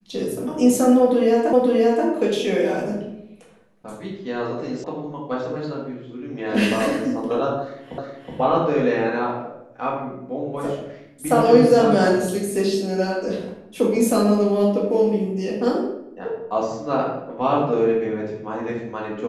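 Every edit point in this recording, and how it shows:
0:01.53: the same again, the last 0.53 s
0:04.84: cut off before it has died away
0:07.98: the same again, the last 0.37 s

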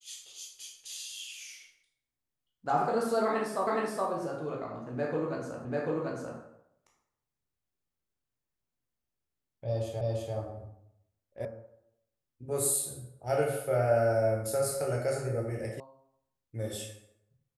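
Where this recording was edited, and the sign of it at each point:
0:03.67: the same again, the last 0.42 s
0:05.65: the same again, the last 0.74 s
0:10.01: the same again, the last 0.34 s
0:11.45: cut off before it has died away
0:15.80: cut off before it has died away

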